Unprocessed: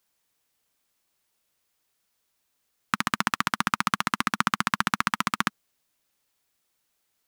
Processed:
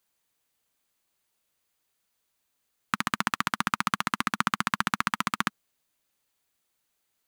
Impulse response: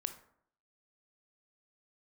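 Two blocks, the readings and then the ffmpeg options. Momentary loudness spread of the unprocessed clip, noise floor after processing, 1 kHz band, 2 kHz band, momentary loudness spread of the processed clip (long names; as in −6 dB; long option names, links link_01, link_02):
4 LU, −78 dBFS, −2.0 dB, −2.0 dB, 4 LU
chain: -af "bandreject=frequency=5400:width=14,volume=-2dB"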